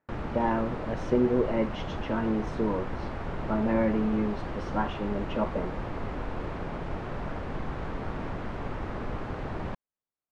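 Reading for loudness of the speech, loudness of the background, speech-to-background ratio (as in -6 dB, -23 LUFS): -29.5 LUFS, -36.0 LUFS, 6.5 dB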